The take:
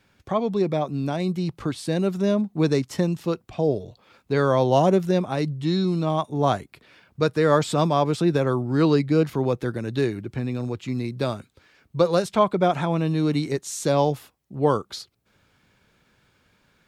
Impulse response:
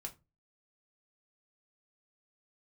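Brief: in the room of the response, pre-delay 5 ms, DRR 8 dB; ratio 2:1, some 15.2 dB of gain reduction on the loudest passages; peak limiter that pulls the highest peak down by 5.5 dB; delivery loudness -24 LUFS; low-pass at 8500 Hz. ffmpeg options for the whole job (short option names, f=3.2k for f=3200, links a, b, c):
-filter_complex "[0:a]lowpass=8.5k,acompressor=threshold=-43dB:ratio=2,alimiter=level_in=2dB:limit=-24dB:level=0:latency=1,volume=-2dB,asplit=2[a][b];[1:a]atrim=start_sample=2205,adelay=5[c];[b][c]afir=irnorm=-1:irlink=0,volume=-4.5dB[d];[a][d]amix=inputs=2:normalize=0,volume=13dB"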